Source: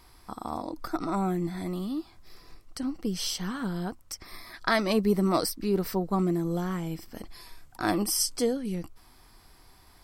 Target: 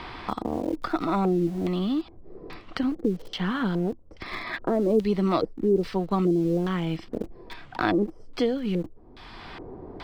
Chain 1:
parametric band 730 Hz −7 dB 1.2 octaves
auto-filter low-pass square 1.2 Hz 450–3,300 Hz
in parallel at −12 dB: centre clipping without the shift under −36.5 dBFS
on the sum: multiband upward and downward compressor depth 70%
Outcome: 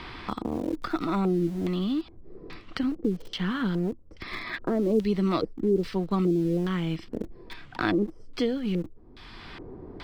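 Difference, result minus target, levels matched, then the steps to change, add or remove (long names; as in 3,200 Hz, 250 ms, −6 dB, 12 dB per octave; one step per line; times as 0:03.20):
1,000 Hz band −2.5 dB
remove: parametric band 730 Hz −7 dB 1.2 octaves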